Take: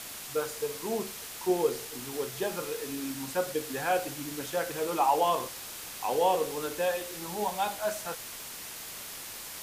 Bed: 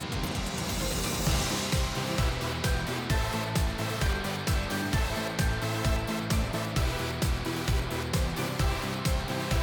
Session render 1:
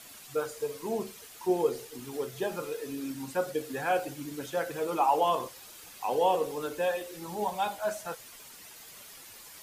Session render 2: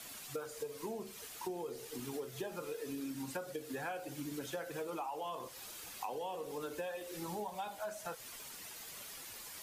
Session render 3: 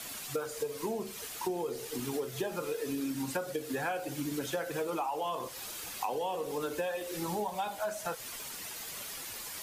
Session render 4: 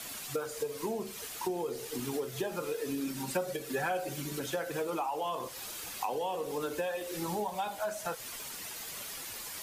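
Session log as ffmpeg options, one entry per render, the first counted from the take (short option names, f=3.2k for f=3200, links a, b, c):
-af "afftdn=nr=10:nf=-42"
-filter_complex "[0:a]acrossover=split=210|1100[a][b][c];[b]alimiter=level_in=0.5dB:limit=-24dB:level=0:latency=1,volume=-0.5dB[d];[a][d][c]amix=inputs=3:normalize=0,acompressor=threshold=-38dB:ratio=12"
-af "volume=7dB"
-filter_complex "[0:a]asettb=1/sr,asplit=3[a][b][c];[a]atrim=end=3.074[d];[b]atrim=start=3.07:end=4.4,asetpts=PTS-STARTPTS,afade=t=in:d=0.004:c=qsin,afade=t=out:st=1.326:d=0.004:c=qsin,aecho=1:1:5.2:0.65,atrim=end_sample=58653[e];[c]atrim=start=4.396[f];[d][e]acrossfade=d=0.004:c1=hsin:c2=qsin[g];[g][f]acrossfade=d=0.004:c1=qsin:c2=hsin"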